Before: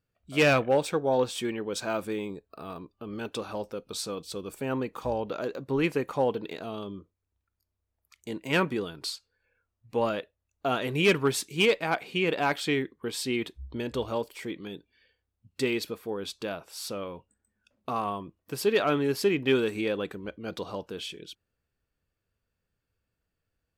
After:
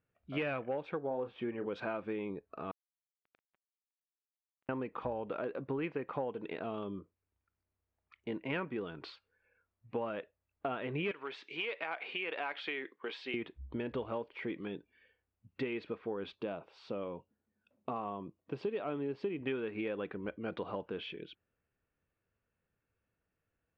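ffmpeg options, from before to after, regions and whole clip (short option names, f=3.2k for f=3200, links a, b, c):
-filter_complex "[0:a]asettb=1/sr,asplit=3[a][b][c];[a]atrim=end=1.074[d];[b]atrim=start=1.07:end=1.66,asetpts=PTS-STARTPTS,afade=t=in:d=0.004:c=qsin,afade=t=out:st=0.586:d=0.004:c=qsin,lowpass=f=1.4k:p=1,asplit=2[e][f];[f]adelay=34,volume=-10dB[g];[e][g]amix=inputs=2:normalize=0,atrim=end_sample=26019[h];[c]atrim=start=1.656[i];[d][h]acrossfade=d=0.004:c1=hsin:c2=qsin[j];[j][i]acrossfade=d=0.004:c1=qsin:c2=hsin,asettb=1/sr,asplit=3[k][l][m];[k]atrim=end=2.714[n];[l]atrim=start=2.71:end=4.69,asetpts=PTS-STARTPTS,afade=t=in:d=0.004:c=qsin,afade=t=out:st=1.976:d=0.004:c=qsin,equalizer=f=560:w=3.3:g=9.5,acompressor=threshold=-37dB:ratio=3:attack=3.2:release=140:knee=1:detection=peak,acrusher=bits=3:mix=0:aa=0.5[o];[m]atrim=start=4.686[p];[n][o]acrossfade=d=0.004:c1=hsin:c2=qsin[q];[q][p]acrossfade=d=0.004:c1=qsin:c2=hsin,asettb=1/sr,asplit=3[r][s][t];[r]atrim=end=11.114[u];[s]atrim=start=11.11:end=13.34,asetpts=PTS-STARTPTS,afade=t=in:d=0.004:c=qsin,afade=t=out:st=2.226:d=0.004:c=qsin,highshelf=f=2.4k:g=11.5,acompressor=threshold=-31dB:ratio=2.5:attack=3.2:release=140:knee=1:detection=peak,highpass=430,lowpass=6.7k[v];[t]atrim=start=13.336[w];[u][v]acrossfade=d=0.004:c1=hsin:c2=qsin[x];[x][w]acrossfade=d=0.004:c1=qsin:c2=hsin,asettb=1/sr,asplit=3[y][z][aa];[y]atrim=end=16.354[ab];[z]atrim=start=16.35:end=19.41,asetpts=PTS-STARTPTS,afade=t=in:d=0.004:c=qsin,afade=t=out:st=3.056:d=0.004:c=qsin,highpass=87,equalizer=f=1.7k:t=o:w=1.3:g=-8[ac];[aa]atrim=start=19.406[ad];[ab][ac]acrossfade=d=0.004:c1=hsin:c2=qsin[ae];[ae][ad]acrossfade=d=0.004:c1=qsin:c2=hsin,lowpass=f=2.7k:w=0.5412,lowpass=f=2.7k:w=1.3066,lowshelf=f=74:g=-10.5,acompressor=threshold=-34dB:ratio=6"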